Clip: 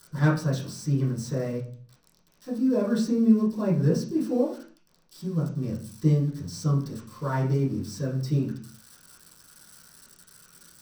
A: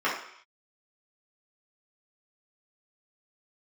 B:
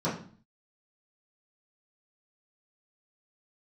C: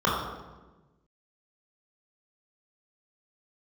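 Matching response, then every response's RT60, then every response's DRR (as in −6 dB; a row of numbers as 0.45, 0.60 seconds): B; non-exponential decay, 0.45 s, 1.2 s; −9.0, −11.0, −6.0 decibels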